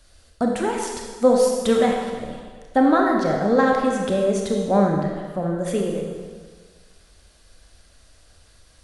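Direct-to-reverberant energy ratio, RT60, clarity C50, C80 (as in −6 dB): 0.0 dB, 1.6 s, 2.0 dB, 3.5 dB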